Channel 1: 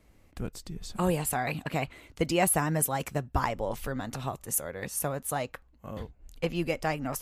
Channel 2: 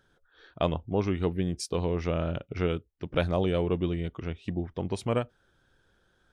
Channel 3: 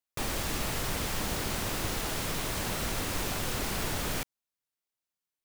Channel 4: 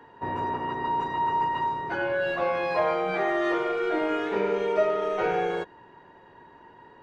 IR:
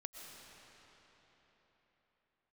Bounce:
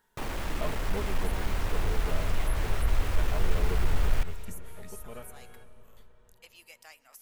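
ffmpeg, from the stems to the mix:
-filter_complex "[0:a]highpass=330,aderivative,volume=-6.5dB,asplit=3[link_01][link_02][link_03];[link_02]volume=-12.5dB[link_04];[1:a]aecho=1:1:4.7:0.83,volume=-12.5dB,asplit=2[link_05][link_06];[link_06]volume=-7dB[link_07];[2:a]asoftclip=type=tanh:threshold=-33dB,volume=1.5dB,asplit=2[link_08][link_09];[link_09]volume=-9dB[link_10];[3:a]highpass=frequency=1500:poles=1,acompressor=threshold=-33dB:ratio=6,volume=-18.5dB[link_11];[link_03]apad=whole_len=279206[link_12];[link_05][link_12]sidechaincompress=threshold=-44dB:ratio=8:attack=7:release=529[link_13];[4:a]atrim=start_sample=2205[link_14];[link_04][link_07][link_10]amix=inputs=3:normalize=0[link_15];[link_15][link_14]afir=irnorm=-1:irlink=0[link_16];[link_01][link_13][link_08][link_11][link_16]amix=inputs=5:normalize=0,acrossover=split=2900[link_17][link_18];[link_18]acompressor=threshold=-46dB:ratio=4:attack=1:release=60[link_19];[link_17][link_19]amix=inputs=2:normalize=0,asubboost=boost=11.5:cutoff=63"

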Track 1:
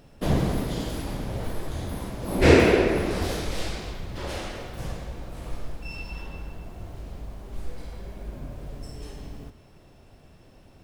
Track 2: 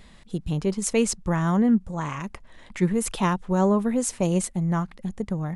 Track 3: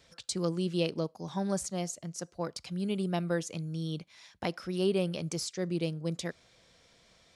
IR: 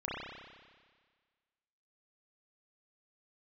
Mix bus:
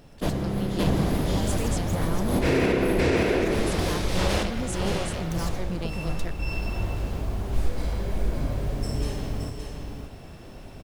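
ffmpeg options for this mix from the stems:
-filter_complex "[0:a]volume=1dB,asplit=3[link_01][link_02][link_03];[link_02]volume=-18.5dB[link_04];[link_03]volume=-5.5dB[link_05];[1:a]alimiter=limit=-17.5dB:level=0:latency=1,adelay=650,volume=-14dB[link_06];[2:a]aeval=exprs='max(val(0),0)':channel_layout=same,volume=-6.5dB,asplit=2[link_07][link_08];[link_08]apad=whole_len=477633[link_09];[link_01][link_09]sidechaincompress=threshold=-53dB:ratio=8:attack=36:release=286[link_10];[3:a]atrim=start_sample=2205[link_11];[link_04][link_11]afir=irnorm=-1:irlink=0[link_12];[link_05]aecho=0:1:571:1[link_13];[link_10][link_06][link_07][link_12][link_13]amix=inputs=5:normalize=0,dynaudnorm=framelen=310:gausssize=3:maxgain=7dB,alimiter=limit=-13dB:level=0:latency=1:release=155"

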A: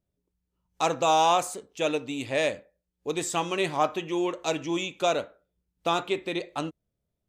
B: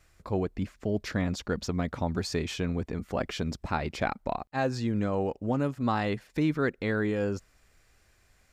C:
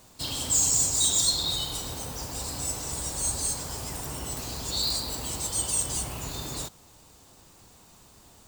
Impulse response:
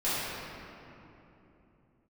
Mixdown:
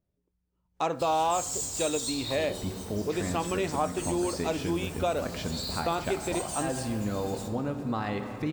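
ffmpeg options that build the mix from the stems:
-filter_complex "[0:a]highshelf=frequency=2800:gain=-11,volume=1.5dB,asplit=2[link_01][link_02];[1:a]adelay=2050,volume=-3.5dB,asplit=2[link_03][link_04];[link_04]volume=-16.5dB[link_05];[2:a]adelay=800,volume=-10.5dB,asplit=2[link_06][link_07];[link_07]volume=-13dB[link_08];[link_02]apad=whole_len=466301[link_09];[link_03][link_09]sidechaincompress=threshold=-28dB:ratio=8:attack=16:release=127[link_10];[3:a]atrim=start_sample=2205[link_11];[link_05][link_08]amix=inputs=2:normalize=0[link_12];[link_12][link_11]afir=irnorm=-1:irlink=0[link_13];[link_01][link_10][link_06][link_13]amix=inputs=4:normalize=0,acompressor=threshold=-27dB:ratio=2"

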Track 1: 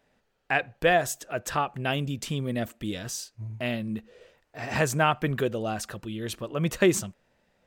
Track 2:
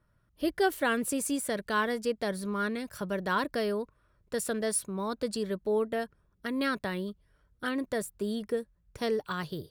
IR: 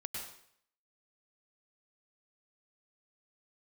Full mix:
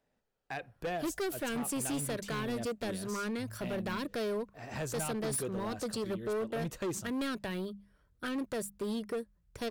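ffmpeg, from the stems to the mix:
-filter_complex "[0:a]equalizer=frequency=2400:width=0.65:gain=-4.5,volume=-9.5dB[link_01];[1:a]bandreject=frequency=50:width_type=h:width=6,bandreject=frequency=100:width_type=h:width=6,bandreject=frequency=150:width_type=h:width=6,bandreject=frequency=200:width_type=h:width=6,adelay=600,volume=-1dB[link_02];[link_01][link_02]amix=inputs=2:normalize=0,acrossover=split=460|3000[link_03][link_04][link_05];[link_04]acompressor=threshold=-35dB:ratio=6[link_06];[link_03][link_06][link_05]amix=inputs=3:normalize=0,asoftclip=type=hard:threshold=-31dB"

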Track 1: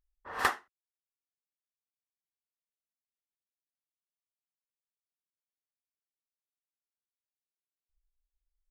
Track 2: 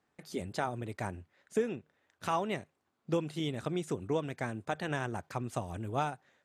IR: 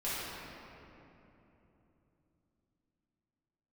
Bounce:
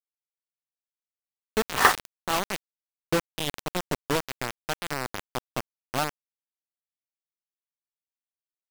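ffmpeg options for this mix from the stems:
-filter_complex "[0:a]adelay=1400,volume=-0.5dB,asplit=2[link_01][link_02];[link_02]volume=-14.5dB[link_03];[1:a]lowpass=frequency=5400:width=0.5412,lowpass=frequency=5400:width=1.3066,volume=-6dB[link_04];[2:a]atrim=start_sample=2205[link_05];[link_03][link_05]afir=irnorm=-1:irlink=0[link_06];[link_01][link_04][link_06]amix=inputs=3:normalize=0,highshelf=frequency=5800:gain=-7,dynaudnorm=framelen=360:gausssize=7:maxgain=10.5dB,acrusher=bits=3:mix=0:aa=0.000001"

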